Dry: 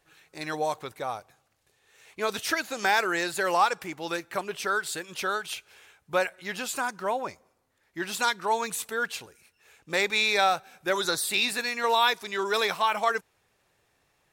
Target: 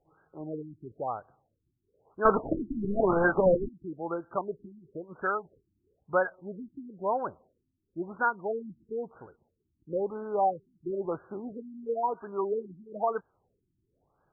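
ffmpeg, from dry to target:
-filter_complex "[0:a]asettb=1/sr,asplit=3[a][b][c];[a]atrim=end=2.254[d];[b]atrim=start=2.25:end=3.69,asetpts=PTS-STARTPTS,afade=t=in:d=0.004:c=qsin,afade=t=out:st=1.436:d=0.004:c=qsin,asplit=2[e][f];[f]highpass=f=720:p=1,volume=30dB,asoftclip=type=tanh:threshold=-9.5dB[g];[e][g]amix=inputs=2:normalize=0,lowpass=f=1.8k:p=1,volume=-6dB[h];[c]atrim=start=3.686[i];[d][h]acrossfade=d=0.004:c1=hsin:c2=qsin[j];[j][i]acrossfade=d=0.004:c1=qsin:c2=hsin,afftfilt=real='re*lt(b*sr/1024,340*pow(1700/340,0.5+0.5*sin(2*PI*1*pts/sr)))':imag='im*lt(b*sr/1024,340*pow(1700/340,0.5+0.5*sin(2*PI*1*pts/sr)))':win_size=1024:overlap=0.75"

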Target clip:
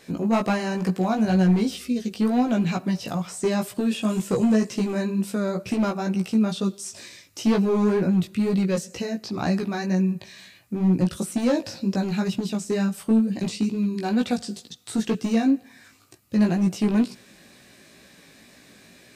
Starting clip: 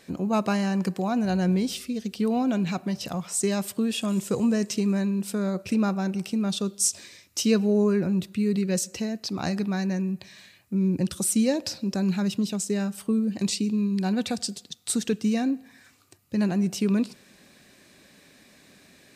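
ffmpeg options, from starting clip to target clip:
-filter_complex "[0:a]acrossover=split=2500[a][b];[b]acompressor=threshold=-38dB:ratio=4:attack=1:release=60[c];[a][c]amix=inputs=2:normalize=0,asoftclip=type=hard:threshold=-19.5dB,flanger=delay=16:depth=2.6:speed=2.1,volume=6.5dB"

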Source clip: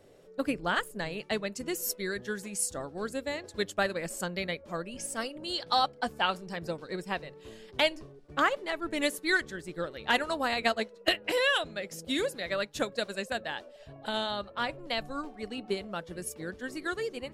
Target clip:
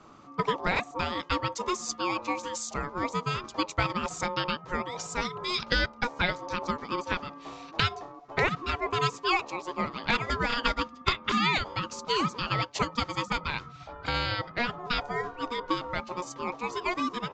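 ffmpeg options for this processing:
-filter_complex "[0:a]acrossover=split=180[a][b];[b]acompressor=threshold=-31dB:ratio=2[c];[a][c]amix=inputs=2:normalize=0,aeval=exprs='val(0)*sin(2*PI*720*n/s)':c=same,aresample=16000,aresample=44100,volume=8dB"

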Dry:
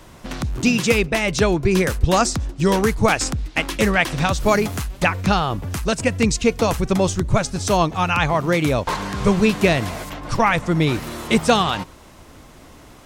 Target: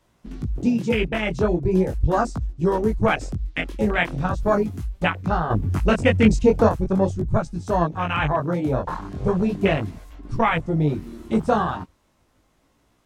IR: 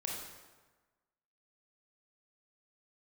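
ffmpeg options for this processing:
-filter_complex "[0:a]flanger=delay=17.5:depth=6:speed=0.39,asettb=1/sr,asplit=3[a][b][c];[a]atrim=end=5.504[d];[b]atrim=start=5.5:end=6.69,asetpts=PTS-STARTPTS,afade=t=in:d=0.004:c=qsin,afade=t=out:st=1.186:d=0.004:c=qsin,acontrast=65[e];[c]atrim=start=6.686[f];[d][e]acrossfade=d=0.004:c1=hsin:c2=qsin[g];[g][f]acrossfade=d=0.004:c1=qsin:c2=hsin,afwtdn=0.0708"

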